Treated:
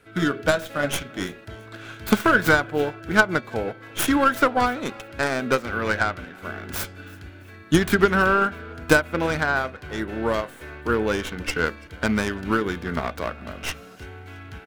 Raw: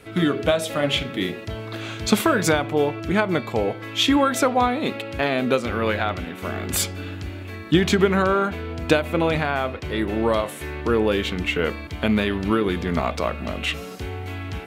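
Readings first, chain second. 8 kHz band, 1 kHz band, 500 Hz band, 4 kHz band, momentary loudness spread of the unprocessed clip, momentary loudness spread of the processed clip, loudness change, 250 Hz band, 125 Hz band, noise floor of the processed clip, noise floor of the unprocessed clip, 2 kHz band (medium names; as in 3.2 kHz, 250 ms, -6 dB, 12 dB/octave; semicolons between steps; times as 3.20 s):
-3.0 dB, +0.5 dB, -2.5 dB, -5.5 dB, 12 LU, 18 LU, -0.5 dB, -2.5 dB, -3.5 dB, -44 dBFS, -36 dBFS, +4.0 dB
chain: tracing distortion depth 0.37 ms; peaking EQ 1.5 kHz +10.5 dB 0.32 oct; on a send: frequency-shifting echo 335 ms, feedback 44%, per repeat +31 Hz, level -20 dB; on the sum: upward expansion 1.5:1, over -32 dBFS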